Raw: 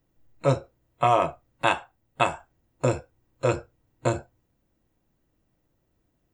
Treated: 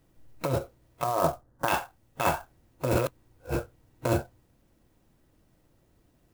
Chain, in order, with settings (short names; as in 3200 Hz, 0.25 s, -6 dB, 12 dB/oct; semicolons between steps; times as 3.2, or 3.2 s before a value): 1.04–1.68 elliptic low-pass 1700 Hz; negative-ratio compressor -27 dBFS, ratio -1; 2.95–3.55 reverse; clock jitter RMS 0.034 ms; gain +2 dB